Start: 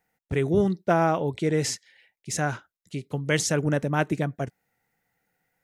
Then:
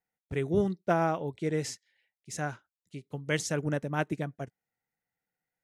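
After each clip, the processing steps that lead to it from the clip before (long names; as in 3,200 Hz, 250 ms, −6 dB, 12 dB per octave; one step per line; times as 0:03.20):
expander for the loud parts 1.5 to 1, over −40 dBFS
level −4 dB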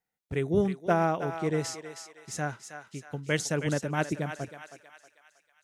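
feedback echo with a high-pass in the loop 318 ms, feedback 53%, high-pass 770 Hz, level −7.5 dB
level +1.5 dB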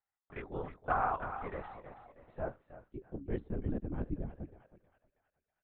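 band-pass filter sweep 1,100 Hz → 210 Hz, 0:01.52–0:03.59
linear-prediction vocoder at 8 kHz whisper
level +1 dB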